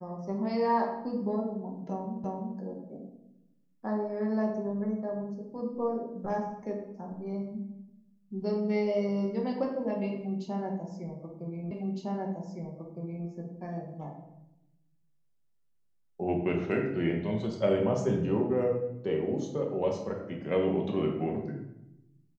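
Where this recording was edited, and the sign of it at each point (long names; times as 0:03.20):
0:02.24: the same again, the last 0.34 s
0:11.71: the same again, the last 1.56 s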